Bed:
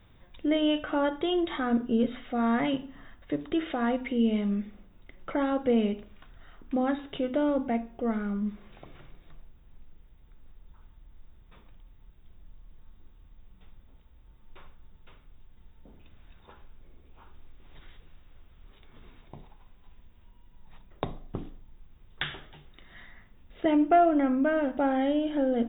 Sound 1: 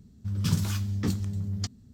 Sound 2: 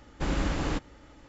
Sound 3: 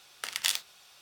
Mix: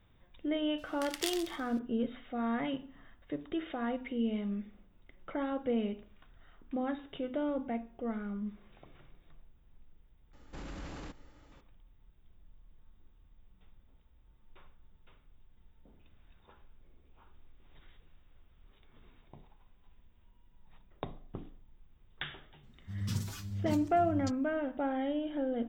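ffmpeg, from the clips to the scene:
-filter_complex "[0:a]volume=-7.5dB[a];[3:a]aecho=1:1:131|262|393:0.299|0.0716|0.0172[b];[2:a]alimiter=level_in=3.5dB:limit=-24dB:level=0:latency=1:release=41,volume=-3.5dB[c];[1:a]asplit=2[d][e];[e]adelay=5.8,afreqshift=1.8[f];[d][f]amix=inputs=2:normalize=1[g];[b]atrim=end=1.01,asetpts=PTS-STARTPTS,volume=-8.5dB,afade=t=in:d=0.004:c=hsin,afade=t=out:st=1.006:d=0.004:c=hsin,adelay=780[h];[c]atrim=end=1.28,asetpts=PTS-STARTPTS,volume=-8.5dB,afade=t=in:d=0.004:c=hsin,afade=t=out:st=1.276:d=0.004:c=hsin,adelay=10330[i];[g]atrim=end=1.93,asetpts=PTS-STARTPTS,volume=-6dB,afade=t=in:d=0.004:c=hsin,afade=t=out:st=1.926:d=0.004:c=hsin,adelay=22630[j];[a][h][i][j]amix=inputs=4:normalize=0"

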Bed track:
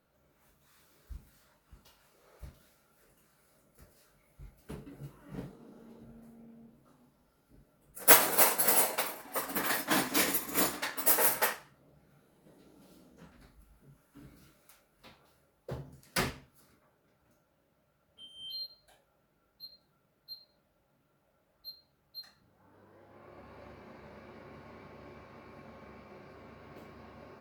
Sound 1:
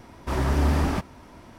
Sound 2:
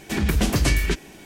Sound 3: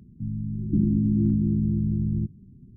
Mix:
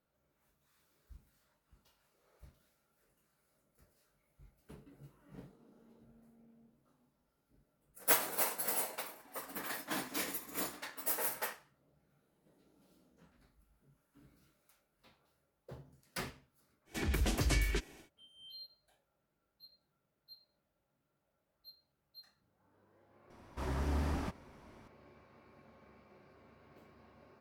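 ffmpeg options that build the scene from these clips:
-filter_complex "[0:a]volume=-10dB[a];[2:a]equalizer=f=190:w=6:g=-13,atrim=end=1.25,asetpts=PTS-STARTPTS,volume=-11.5dB,afade=t=in:d=0.1,afade=t=out:st=1.15:d=0.1,adelay=16850[b];[1:a]atrim=end=1.58,asetpts=PTS-STARTPTS,volume=-13dB,afade=t=in:d=0.004:c=hsin,afade=t=out:st=1.576:d=0.004:c=hsin,adelay=23300[c];[a][b][c]amix=inputs=3:normalize=0"

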